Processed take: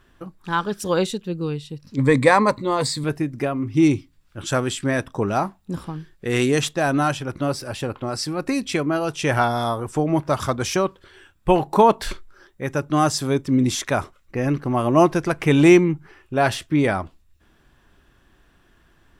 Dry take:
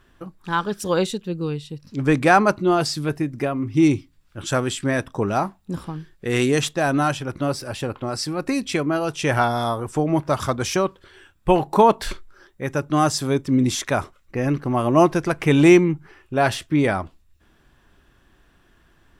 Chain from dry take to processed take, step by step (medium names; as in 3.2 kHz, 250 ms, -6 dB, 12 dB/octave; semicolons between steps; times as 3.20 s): 1.97–3.04 s: rippled EQ curve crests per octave 1, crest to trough 13 dB